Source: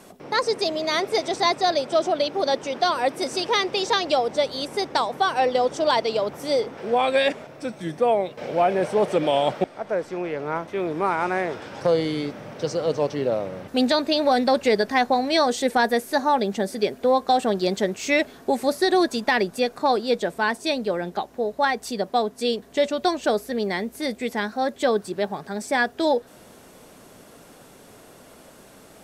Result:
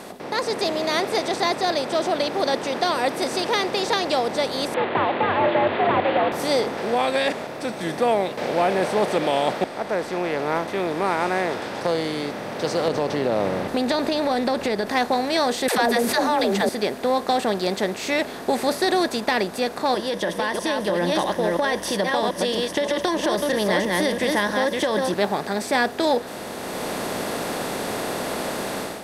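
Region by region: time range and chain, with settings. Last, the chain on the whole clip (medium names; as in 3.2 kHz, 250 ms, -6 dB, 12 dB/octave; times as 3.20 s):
4.74–6.32 s: one-bit delta coder 16 kbps, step -32 dBFS + frequency shift +93 Hz
12.88–14.87 s: tilt EQ -1.5 dB/octave + compression 4:1, threshold -22 dBFS
15.68–16.69 s: phase dispersion lows, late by 106 ms, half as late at 400 Hz + level flattener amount 70%
19.94–25.14 s: chunks repeated in reverse 326 ms, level -6 dB + rippled EQ curve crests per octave 1.2, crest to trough 14 dB + compression, threshold -22 dBFS
whole clip: spectral levelling over time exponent 0.6; level rider; trim -7.5 dB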